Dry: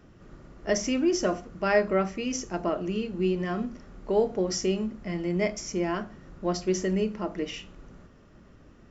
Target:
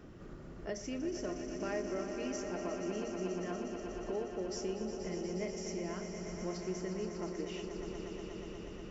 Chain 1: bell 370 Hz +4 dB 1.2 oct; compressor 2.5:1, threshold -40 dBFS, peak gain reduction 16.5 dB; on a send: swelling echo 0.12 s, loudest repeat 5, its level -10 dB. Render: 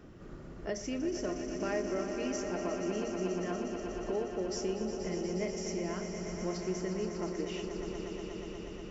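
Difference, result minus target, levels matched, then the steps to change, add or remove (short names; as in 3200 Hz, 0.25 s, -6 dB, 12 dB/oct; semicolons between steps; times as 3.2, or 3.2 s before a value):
compressor: peak gain reduction -3.5 dB
change: compressor 2.5:1, threshold -46 dBFS, peak gain reduction 20 dB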